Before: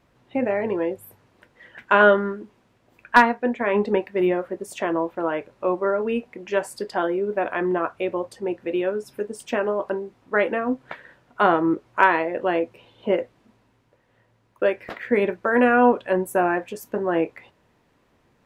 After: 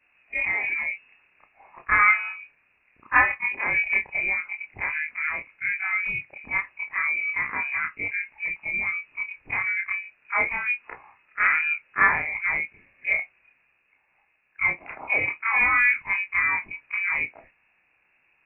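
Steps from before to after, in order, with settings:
every overlapping window played backwards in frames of 63 ms
voice inversion scrambler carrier 2,700 Hz

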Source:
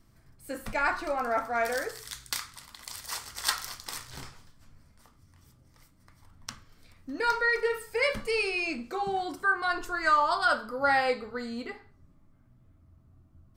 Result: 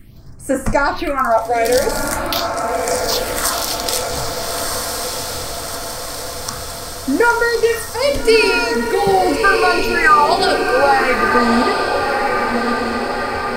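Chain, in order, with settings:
downward compressor 3 to 1, threshold −28 dBFS, peak gain reduction 7.5 dB
all-pass phaser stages 4, 0.45 Hz, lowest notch 190–3,900 Hz
feedback delay with all-pass diffusion 1,299 ms, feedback 63%, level −4 dB
boost into a limiter +20 dB
level −1 dB

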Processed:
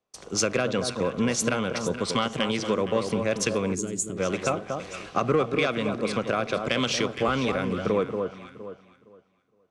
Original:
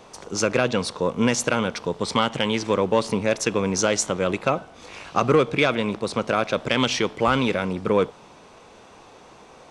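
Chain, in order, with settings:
noise gate with hold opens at −35 dBFS
notch filter 900 Hz, Q 6.9
delay that swaps between a low-pass and a high-pass 232 ms, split 1,300 Hz, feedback 57%, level −7 dB
downward compressor 2.5 to 1, threshold −25 dBFS, peak gain reduction 8 dB
gain on a spectral selection 0:03.75–0:04.17, 440–6,400 Hz −16 dB
multiband upward and downward expander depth 40%
level +1.5 dB

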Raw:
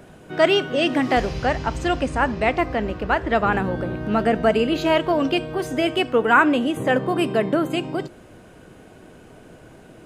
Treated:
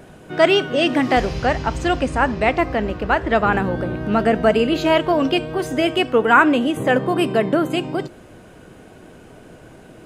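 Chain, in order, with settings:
pitch vibrato 5.3 Hz 25 cents
level +2.5 dB

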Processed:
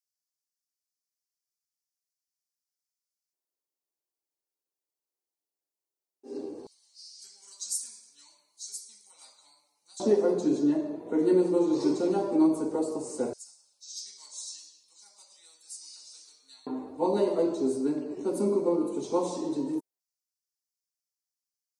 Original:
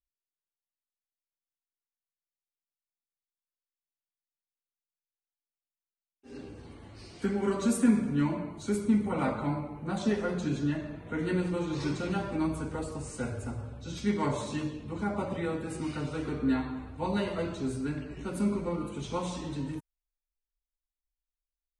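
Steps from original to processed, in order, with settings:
auto-filter high-pass square 0.15 Hz 350–5,200 Hz
flat-topped bell 2,100 Hz −13 dB
level +3 dB

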